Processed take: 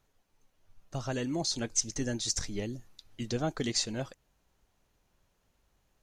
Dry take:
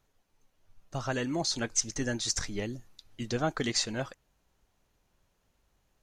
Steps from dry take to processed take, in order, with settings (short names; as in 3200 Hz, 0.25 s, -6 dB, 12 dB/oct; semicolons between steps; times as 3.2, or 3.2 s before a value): dynamic EQ 1400 Hz, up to -7 dB, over -47 dBFS, Q 0.73